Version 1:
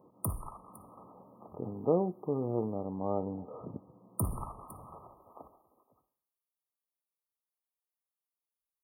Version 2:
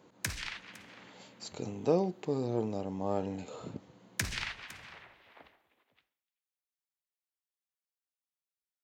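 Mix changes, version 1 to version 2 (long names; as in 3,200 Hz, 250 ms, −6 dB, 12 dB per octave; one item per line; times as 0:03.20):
background −6.5 dB
master: remove linear-phase brick-wall band-stop 1,300–8,900 Hz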